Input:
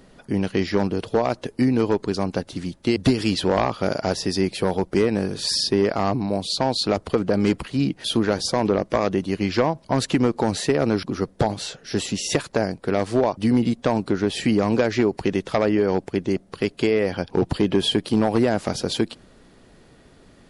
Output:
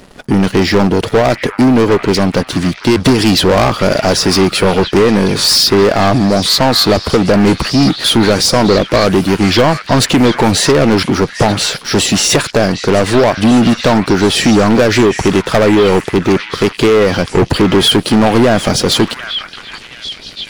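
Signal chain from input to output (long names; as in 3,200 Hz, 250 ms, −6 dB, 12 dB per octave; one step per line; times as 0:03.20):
leveller curve on the samples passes 3
echo through a band-pass that steps 736 ms, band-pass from 1,700 Hz, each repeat 0.7 octaves, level −5 dB
level +6 dB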